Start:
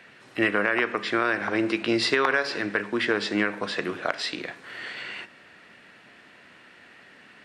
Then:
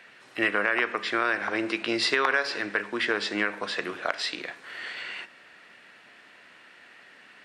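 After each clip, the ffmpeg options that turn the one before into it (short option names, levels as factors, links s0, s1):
-af "lowshelf=f=320:g=-10.5"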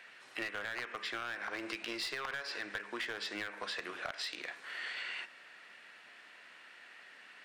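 -af "aeval=exprs='clip(val(0),-1,0.0596)':c=same,lowshelf=f=430:g=-10,acompressor=threshold=0.02:ratio=6,volume=0.75"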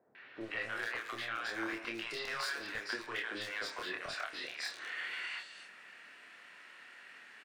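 -filter_complex "[0:a]asplit=2[s0][s1];[s1]adelay=27,volume=0.708[s2];[s0][s2]amix=inputs=2:normalize=0,acrossover=split=680|3900[s3][s4][s5];[s4]adelay=150[s6];[s5]adelay=410[s7];[s3][s6][s7]amix=inputs=3:normalize=0"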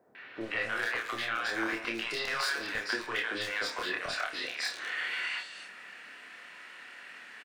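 -filter_complex "[0:a]asplit=2[s0][s1];[s1]adelay=31,volume=0.282[s2];[s0][s2]amix=inputs=2:normalize=0,volume=2"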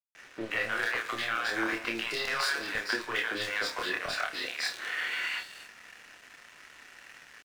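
-af "aeval=exprs='sgn(val(0))*max(abs(val(0))-0.00282,0)':c=same,volume=1.33"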